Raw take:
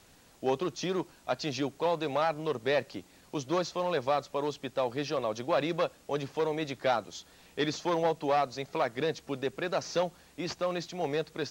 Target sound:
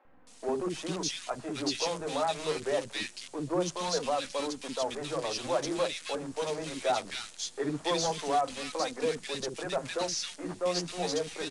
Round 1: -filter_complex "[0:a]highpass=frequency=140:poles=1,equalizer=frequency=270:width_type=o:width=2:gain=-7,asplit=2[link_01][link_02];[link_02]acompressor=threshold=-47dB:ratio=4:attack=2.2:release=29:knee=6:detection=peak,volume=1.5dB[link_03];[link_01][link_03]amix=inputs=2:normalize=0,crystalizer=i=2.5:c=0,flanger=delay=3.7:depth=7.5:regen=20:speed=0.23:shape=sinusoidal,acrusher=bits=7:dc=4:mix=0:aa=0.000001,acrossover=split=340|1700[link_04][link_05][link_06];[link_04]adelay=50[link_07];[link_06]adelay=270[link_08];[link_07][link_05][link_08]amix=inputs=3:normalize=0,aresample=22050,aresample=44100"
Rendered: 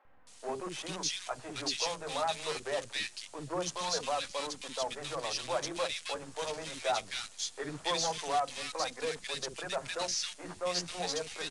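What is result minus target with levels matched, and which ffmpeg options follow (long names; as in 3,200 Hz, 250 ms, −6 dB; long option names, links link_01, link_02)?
250 Hz band −6.5 dB
-filter_complex "[0:a]highpass=frequency=140:poles=1,equalizer=frequency=270:width_type=o:width=2:gain=4,asplit=2[link_01][link_02];[link_02]acompressor=threshold=-47dB:ratio=4:attack=2.2:release=29:knee=6:detection=peak,volume=1.5dB[link_03];[link_01][link_03]amix=inputs=2:normalize=0,crystalizer=i=2.5:c=0,flanger=delay=3.7:depth=7.5:regen=20:speed=0.23:shape=sinusoidal,acrusher=bits=7:dc=4:mix=0:aa=0.000001,acrossover=split=340|1700[link_04][link_05][link_06];[link_04]adelay=50[link_07];[link_06]adelay=270[link_08];[link_07][link_05][link_08]amix=inputs=3:normalize=0,aresample=22050,aresample=44100"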